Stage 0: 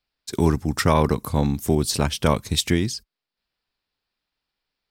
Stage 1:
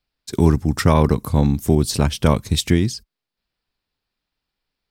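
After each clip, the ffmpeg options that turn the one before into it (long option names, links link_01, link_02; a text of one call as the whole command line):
ffmpeg -i in.wav -af "lowshelf=frequency=320:gain=6.5" out.wav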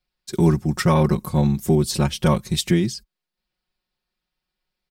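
ffmpeg -i in.wav -af "aecho=1:1:5.5:0.94,volume=-4.5dB" out.wav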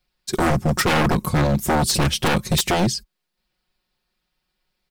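ffmpeg -i in.wav -af "aeval=exprs='0.112*(abs(mod(val(0)/0.112+3,4)-2)-1)':channel_layout=same,volume=6.5dB" out.wav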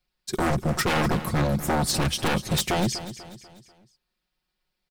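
ffmpeg -i in.wav -af "aecho=1:1:245|490|735|980:0.211|0.0951|0.0428|0.0193,volume=-5dB" out.wav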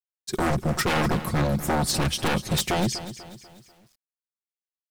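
ffmpeg -i in.wav -af "acrusher=bits=9:mix=0:aa=0.000001" out.wav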